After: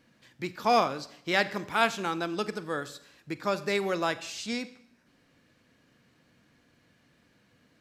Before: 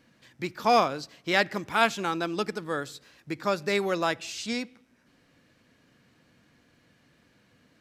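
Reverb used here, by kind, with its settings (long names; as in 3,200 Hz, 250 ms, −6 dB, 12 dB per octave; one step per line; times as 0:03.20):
four-comb reverb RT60 0.7 s, combs from 30 ms, DRR 14.5 dB
level −2 dB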